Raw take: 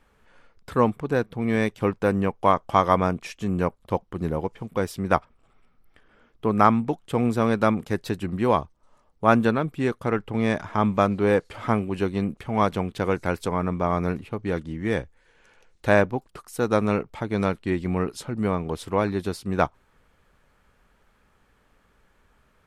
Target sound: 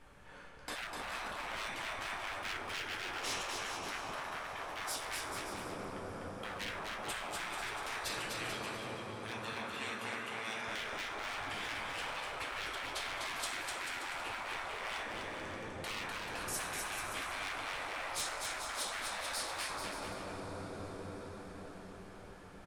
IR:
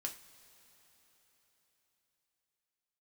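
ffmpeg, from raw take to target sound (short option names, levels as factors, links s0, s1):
-filter_complex "[0:a]acompressor=threshold=0.0501:ratio=8,asettb=1/sr,asplit=3[s0][s1][s2];[s0]atrim=end=8.024[s3];[s1]atrim=start=8.02:end=10.68,asetpts=PTS-STARTPTS,afade=t=in:d=0.004:c=qsin,afade=t=out:st=2.656:d=0.004:c=qsin,highpass=1400[s4];[s2]atrim=start=10.676[s5];[s3][s4]acrossfade=d=0.004:c1=hsin:c2=qsin[s6];[s6][s5]acrossfade=d=0.004:c1=qsin:c2=hsin[s7];[1:a]atrim=start_sample=2205,asetrate=23814,aresample=44100[s8];[s7][s8]afir=irnorm=-1:irlink=0,asoftclip=type=hard:threshold=0.0355,afftfilt=real='re*lt(hypot(re,im),0.0316)':imag='im*lt(hypot(re,im),0.0316)':win_size=1024:overlap=0.75,aecho=1:1:250|437.5|578.1|683.6|762.7:0.631|0.398|0.251|0.158|0.1,volume=1.26"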